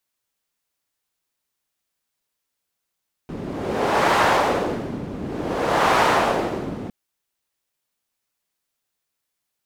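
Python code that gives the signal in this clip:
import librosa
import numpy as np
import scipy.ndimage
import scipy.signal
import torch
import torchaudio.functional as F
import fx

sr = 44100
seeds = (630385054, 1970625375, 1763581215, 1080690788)

y = fx.wind(sr, seeds[0], length_s=3.61, low_hz=230.0, high_hz=950.0, q=1.2, gusts=2, swing_db=14.0)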